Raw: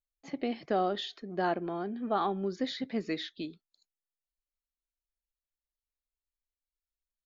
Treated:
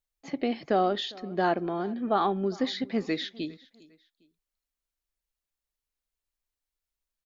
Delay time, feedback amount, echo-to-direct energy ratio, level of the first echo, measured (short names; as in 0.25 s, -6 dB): 0.404 s, 33%, -22.0 dB, -22.5 dB